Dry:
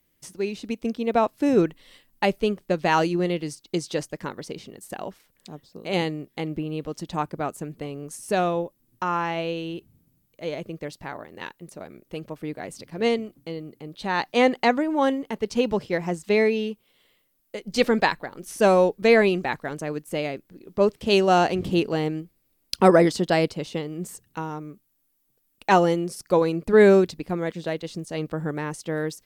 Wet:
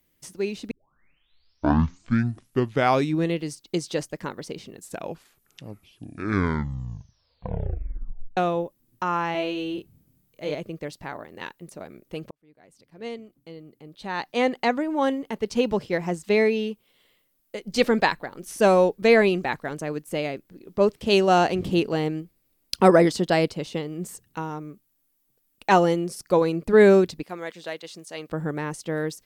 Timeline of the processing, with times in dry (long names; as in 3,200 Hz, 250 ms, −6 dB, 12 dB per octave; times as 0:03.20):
0:00.71: tape start 2.71 s
0:04.61: tape stop 3.76 s
0:09.32–0:10.55: double-tracking delay 27 ms −4 dB
0:12.31–0:15.55: fade in
0:27.23–0:28.30: high-pass filter 900 Hz 6 dB per octave